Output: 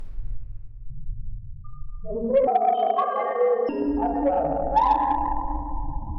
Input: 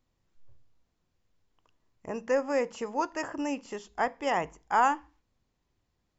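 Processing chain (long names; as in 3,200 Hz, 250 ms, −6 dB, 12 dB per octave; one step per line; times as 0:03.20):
linear delta modulator 32 kbit/s, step −31 dBFS
spectral peaks only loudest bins 2
convolution reverb RT60 3.0 s, pre-delay 3 ms, DRR −4.5 dB
harmonic generator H 3 −26 dB, 8 −33 dB, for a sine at −13 dBFS
0:02.47–0:03.69: frequency shifter +200 Hz
in parallel at +2.5 dB: downward compressor, threshold −29 dBFS, peak gain reduction 9 dB
on the sum: level +2 dB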